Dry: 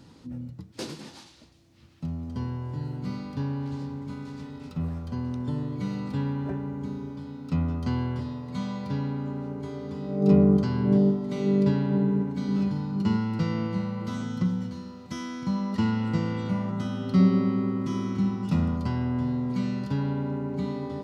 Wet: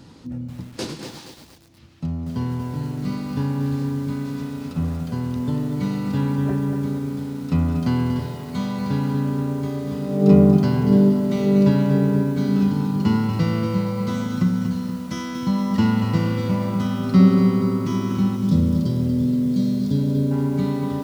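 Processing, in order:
gain on a spectral selection 0:18.36–0:20.31, 640–3,100 Hz −18 dB
feedback echo at a low word length 237 ms, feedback 55%, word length 8 bits, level −7.5 dB
level +6 dB

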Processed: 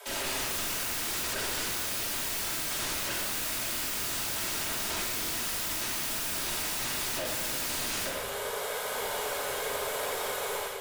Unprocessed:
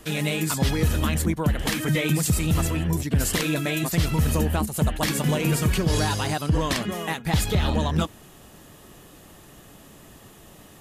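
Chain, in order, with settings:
parametric band 280 Hz −7.5 dB 0.73 octaves
mains-hum notches 50/100/150 Hz
automatic gain control gain up to 14 dB
frequency shifter +390 Hz
wave folding −31 dBFS
rectangular room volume 1,300 cubic metres, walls mixed, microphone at 2.8 metres
level −1 dB

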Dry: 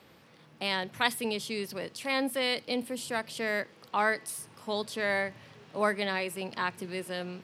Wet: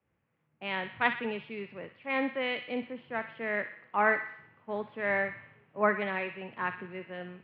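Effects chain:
Butterworth low-pass 2,700 Hz 36 dB per octave
delay with a high-pass on its return 62 ms, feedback 64%, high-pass 1,400 Hz, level −6.5 dB
multiband upward and downward expander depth 70%
level −1.5 dB

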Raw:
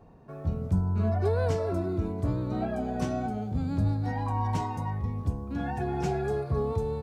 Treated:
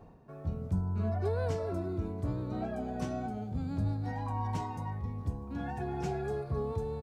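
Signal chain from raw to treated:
reversed playback
upward compression, threshold −38 dBFS
reversed playback
single-tap delay 1,138 ms −22.5 dB
level −5.5 dB

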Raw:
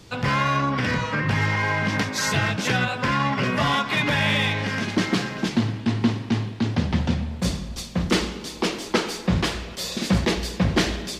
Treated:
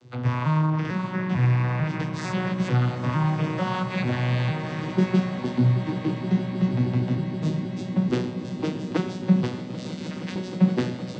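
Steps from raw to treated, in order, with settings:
vocoder with an arpeggio as carrier major triad, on B2, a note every 448 ms
0:09.89–0:10.36: high-pass filter 1,400 Hz
echo that builds up and dies away 157 ms, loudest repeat 8, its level −16.5 dB

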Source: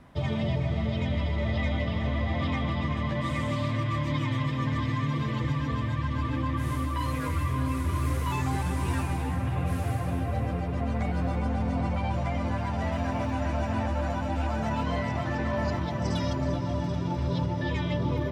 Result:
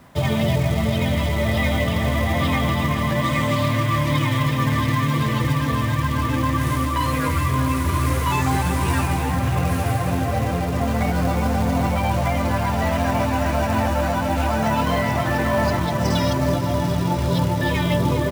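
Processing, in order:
in parallel at −6.5 dB: bit reduction 7 bits
on the sum: repeating echo 857 ms, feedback 59%, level −20 dB
log-companded quantiser 6 bits
high-pass filter 110 Hz 6 dB per octave
parametric band 300 Hz −2.5 dB 0.99 octaves
level +7 dB

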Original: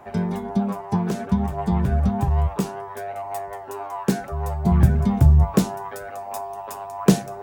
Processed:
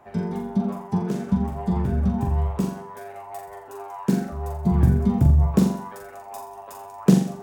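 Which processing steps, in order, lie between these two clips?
dynamic equaliser 220 Hz, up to +7 dB, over −31 dBFS, Q 0.71
on a send: flutter between parallel walls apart 7.3 metres, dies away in 0.51 s
on the sum: level −7 dB

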